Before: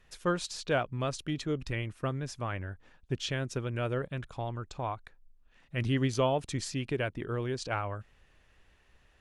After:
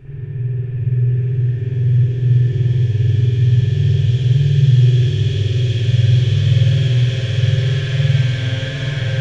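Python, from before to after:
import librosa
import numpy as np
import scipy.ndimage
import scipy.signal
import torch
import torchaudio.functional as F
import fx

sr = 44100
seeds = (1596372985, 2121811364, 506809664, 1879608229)

y = fx.paulstretch(x, sr, seeds[0], factor=26.0, window_s=0.5, from_s=2.97)
y = fx.low_shelf_res(y, sr, hz=160.0, db=13.5, q=3.0)
y = fx.rev_spring(y, sr, rt60_s=2.0, pass_ms=(49,), chirp_ms=80, drr_db=-8.5)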